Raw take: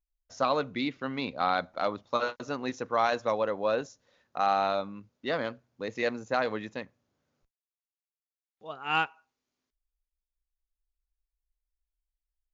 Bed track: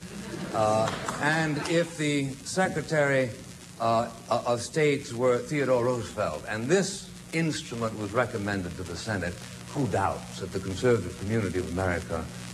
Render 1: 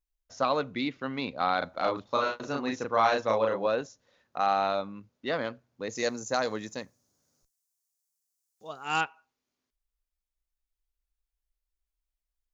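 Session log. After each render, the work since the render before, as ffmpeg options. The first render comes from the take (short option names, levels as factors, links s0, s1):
-filter_complex "[0:a]asettb=1/sr,asplit=3[s0][s1][s2];[s0]atrim=end=1.584[s3];[s1]atrim=start=1.58:end=3.67,asetpts=PTS-STARTPTS,afade=t=in:d=0.004:c=qsin,afade=t=out:st=2.086:d=0.004:c=qsin,asplit=2[s4][s5];[s5]adelay=36,volume=0.794[s6];[s4][s6]amix=inputs=2:normalize=0,atrim=end_sample=92169[s7];[s2]atrim=start=3.666[s8];[s3][s7]acrossfade=d=0.004:c1=hsin:c2=qsin[s9];[s9][s8]acrossfade=d=0.004:c1=qsin:c2=hsin,asettb=1/sr,asplit=3[s10][s11][s12];[s10]atrim=end=5.894[s13];[s11]atrim=start=5.89:end=9.01,asetpts=PTS-STARTPTS,afade=t=in:d=0.004:c=qsin,afade=t=out:st=3.116:d=0.004:c=qsin,highshelf=f=4300:t=q:w=1.5:g=14[s14];[s12]atrim=start=9.006[s15];[s13][s14]acrossfade=d=0.004:c1=hsin:c2=qsin[s16];[s16][s15]acrossfade=d=0.004:c1=qsin:c2=hsin"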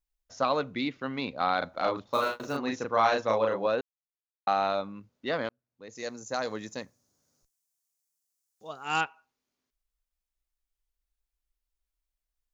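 -filter_complex "[0:a]asettb=1/sr,asplit=3[s0][s1][s2];[s0]atrim=end=2.134[s3];[s1]atrim=start=2.13:end=2.57,asetpts=PTS-STARTPTS,afade=t=in:d=0.004:c=qsin,afade=t=out:st=0.436:d=0.004:c=qsin,acrusher=bits=6:mode=log:mix=0:aa=0.000001[s4];[s2]atrim=start=2.566[s5];[s3][s4]acrossfade=d=0.004:c1=hsin:c2=qsin[s6];[s6][s5]acrossfade=d=0.004:c1=qsin:c2=hsin,asplit=4[s7][s8][s9][s10];[s7]atrim=end=3.81,asetpts=PTS-STARTPTS,afade=t=out:st=3.806:d=0.004:c=hsin[s11];[s8]atrim=start=3.81:end=4.47,asetpts=PTS-STARTPTS,volume=0[s12];[s9]atrim=start=4.47:end=5.49,asetpts=PTS-STARTPTS,afade=t=in:d=0.004:c=hsin,afade=t=out:st=1.016:d=0.004:c=hsin[s13];[s10]atrim=start=5.49,asetpts=PTS-STARTPTS,afade=t=in:d=1.32[s14];[s11][s12][s13][s14]concat=n=4:v=0:a=1"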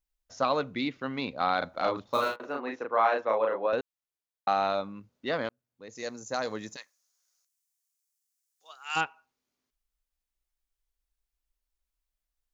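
-filter_complex "[0:a]asettb=1/sr,asplit=3[s0][s1][s2];[s0]atrim=end=2.364[s3];[s1]atrim=start=2.36:end=3.73,asetpts=PTS-STARTPTS,afade=t=in:d=0.004:c=qsin,afade=t=out:st=1.366:d=0.004:c=qsin,acrossover=split=280 2900:gain=0.1 1 0.0891[s4][s5][s6];[s4][s5][s6]amix=inputs=3:normalize=0[s7];[s2]atrim=start=3.726[s8];[s3][s7]acrossfade=d=0.004:c1=hsin:c2=qsin[s9];[s9][s8]acrossfade=d=0.004:c1=qsin:c2=hsin,asplit=3[s10][s11][s12];[s10]afade=t=out:st=6.75:d=0.02[s13];[s11]highpass=1500,afade=t=in:st=6.75:d=0.02,afade=t=out:st=8.95:d=0.02[s14];[s12]afade=t=in:st=8.95:d=0.02[s15];[s13][s14][s15]amix=inputs=3:normalize=0"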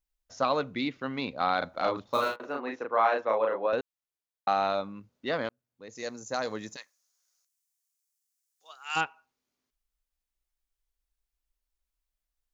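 -af anull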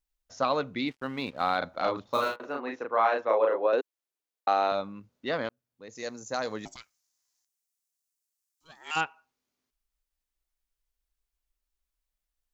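-filter_complex "[0:a]asplit=3[s0][s1][s2];[s0]afade=t=out:st=0.87:d=0.02[s3];[s1]aeval=exprs='sgn(val(0))*max(abs(val(0))-0.00224,0)':c=same,afade=t=in:st=0.87:d=0.02,afade=t=out:st=1.56:d=0.02[s4];[s2]afade=t=in:st=1.56:d=0.02[s5];[s3][s4][s5]amix=inputs=3:normalize=0,asettb=1/sr,asplit=3[s6][s7][s8];[s6]atrim=end=3.294[s9];[s7]atrim=start=3.29:end=4.72,asetpts=PTS-STARTPTS,afade=t=in:d=0.004:c=qsin,afade=t=out:st=1.426:d=0.004:c=qsin,highpass=f=350:t=q:w=1.7[s10];[s8]atrim=start=4.716[s11];[s9][s10]acrossfade=d=0.004:c1=hsin:c2=qsin[s12];[s12][s11]acrossfade=d=0.004:c1=qsin:c2=hsin,asettb=1/sr,asplit=3[s13][s14][s15];[s13]atrim=end=6.654[s16];[s14]atrim=start=6.65:end=8.91,asetpts=PTS-STARTPTS,afade=t=in:d=0.004:c=qsin,afade=t=out:st=2.256:d=0.004:c=qsin,aeval=exprs='val(0)*sin(2*PI*480*n/s)':c=same[s17];[s15]atrim=start=8.906[s18];[s16][s17]acrossfade=d=0.004:c1=hsin:c2=qsin[s19];[s19][s18]acrossfade=d=0.004:c1=qsin:c2=hsin"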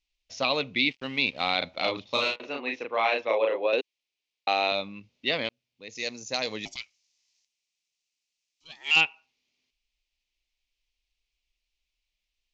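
-af "lowpass=f=5800:w=0.5412,lowpass=f=5800:w=1.3066,highshelf=f=1900:t=q:w=3:g=8.5"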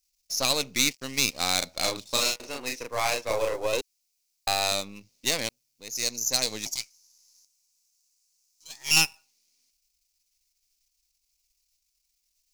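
-af "aeval=exprs='if(lt(val(0),0),0.447*val(0),val(0))':c=same,aexciter=amount=9.7:drive=3.3:freq=4700"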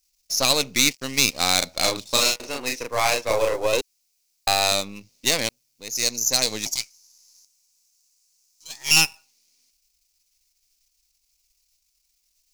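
-af "volume=1.88,alimiter=limit=0.708:level=0:latency=1"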